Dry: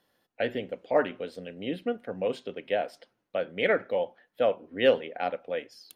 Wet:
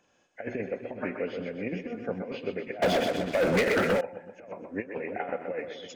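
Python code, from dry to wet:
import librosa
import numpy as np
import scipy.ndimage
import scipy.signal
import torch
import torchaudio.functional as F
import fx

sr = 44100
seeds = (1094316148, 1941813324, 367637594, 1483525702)

y = fx.freq_compress(x, sr, knee_hz=1500.0, ratio=1.5)
y = fx.over_compress(y, sr, threshold_db=-32.0, ratio=-0.5)
y = fx.echo_split(y, sr, split_hz=310.0, low_ms=354, high_ms=126, feedback_pct=52, wet_db=-6.5)
y = fx.leveller(y, sr, passes=5, at=(2.82, 4.01))
y = F.gain(torch.from_numpy(y), -1.5).numpy()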